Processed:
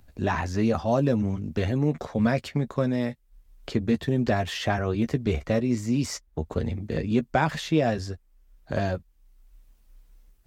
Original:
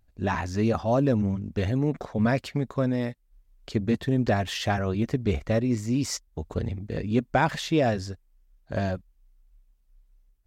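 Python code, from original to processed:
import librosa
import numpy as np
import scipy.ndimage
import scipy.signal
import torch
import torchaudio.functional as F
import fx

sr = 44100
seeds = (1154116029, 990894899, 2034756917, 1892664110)

y = fx.doubler(x, sr, ms=13.0, db=-10)
y = fx.band_squash(y, sr, depth_pct=40)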